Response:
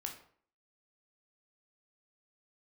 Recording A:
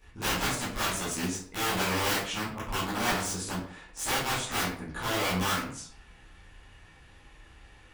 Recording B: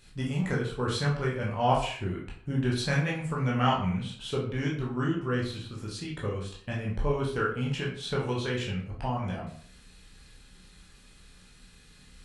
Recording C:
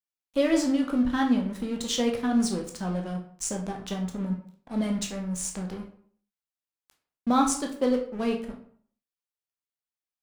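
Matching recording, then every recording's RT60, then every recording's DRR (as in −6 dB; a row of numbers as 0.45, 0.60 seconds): C; 0.55, 0.55, 0.55 seconds; −11.5, −4.5, 1.5 decibels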